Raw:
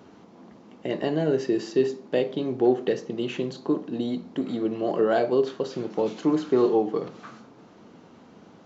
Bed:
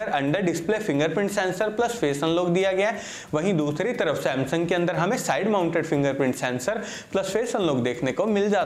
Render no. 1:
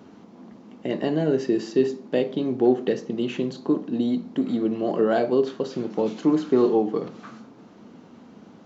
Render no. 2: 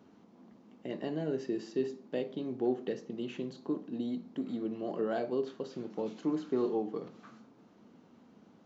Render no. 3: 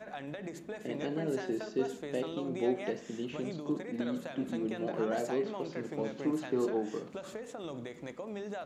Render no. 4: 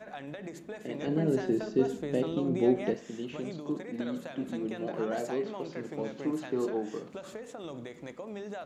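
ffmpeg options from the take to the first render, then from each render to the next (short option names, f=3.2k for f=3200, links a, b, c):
-af "equalizer=f=230:w=2:g=6"
-af "volume=-12dB"
-filter_complex "[1:a]volume=-18.5dB[a];[0:a][a]amix=inputs=2:normalize=0"
-filter_complex "[0:a]asettb=1/sr,asplit=3[a][b][c];[a]atrim=end=1.074[d];[b]atrim=start=1.07:end=2.94,asetpts=PTS-STARTPTS,afade=t=in:d=0.004:c=qsin,afade=t=out:st=1.866:d=0.004:c=qsin,lowshelf=f=370:g=11[e];[c]atrim=start=2.936[f];[d][e]acrossfade=d=0.004:c1=hsin:c2=qsin[g];[g][f]acrossfade=d=0.004:c1=qsin:c2=hsin"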